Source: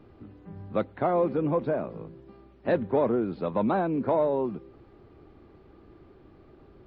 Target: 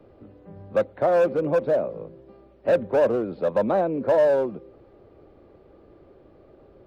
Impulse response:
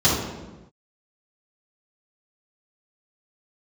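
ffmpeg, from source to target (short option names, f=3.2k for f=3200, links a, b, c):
-filter_complex "[0:a]equalizer=f=550:w=2.3:g=13,acrossover=split=220|600|1500[a][b][c][d];[b]asoftclip=type=hard:threshold=-21dB[e];[a][e][c][d]amix=inputs=4:normalize=0,volume=-2dB"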